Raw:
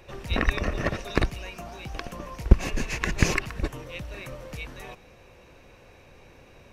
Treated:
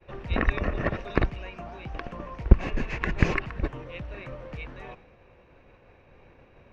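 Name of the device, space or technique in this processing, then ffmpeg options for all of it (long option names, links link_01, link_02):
hearing-loss simulation: -af "lowpass=2400,agate=range=-33dB:threshold=-48dB:ratio=3:detection=peak"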